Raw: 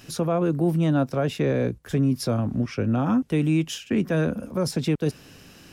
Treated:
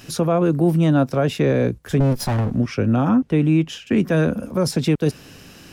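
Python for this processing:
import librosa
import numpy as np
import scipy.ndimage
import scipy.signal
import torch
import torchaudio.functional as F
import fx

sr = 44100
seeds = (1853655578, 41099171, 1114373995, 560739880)

y = fx.lower_of_two(x, sr, delay_ms=1.2, at=(2.0, 2.51))
y = fx.lowpass(y, sr, hz=2300.0, slope=6, at=(3.09, 3.87))
y = F.gain(torch.from_numpy(y), 5.0).numpy()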